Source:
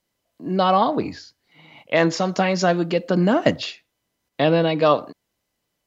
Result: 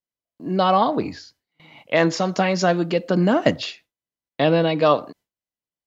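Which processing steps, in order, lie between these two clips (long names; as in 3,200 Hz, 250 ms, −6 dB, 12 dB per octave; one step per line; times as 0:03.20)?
noise gate with hold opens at −40 dBFS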